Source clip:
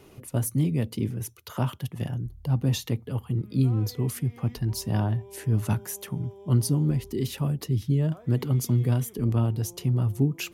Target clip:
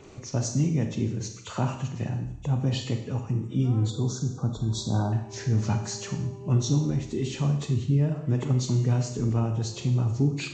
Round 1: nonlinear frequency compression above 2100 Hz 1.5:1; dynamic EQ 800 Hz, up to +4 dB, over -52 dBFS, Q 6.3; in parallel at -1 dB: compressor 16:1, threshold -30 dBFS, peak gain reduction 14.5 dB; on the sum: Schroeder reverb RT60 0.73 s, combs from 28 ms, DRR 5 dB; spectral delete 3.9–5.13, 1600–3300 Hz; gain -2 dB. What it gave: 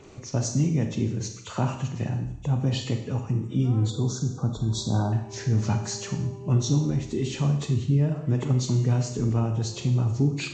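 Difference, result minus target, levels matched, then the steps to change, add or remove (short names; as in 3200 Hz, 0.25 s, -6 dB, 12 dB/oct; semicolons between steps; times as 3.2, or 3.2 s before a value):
compressor: peak gain reduction -6.5 dB
change: compressor 16:1, threshold -37 dBFS, peak gain reduction 21 dB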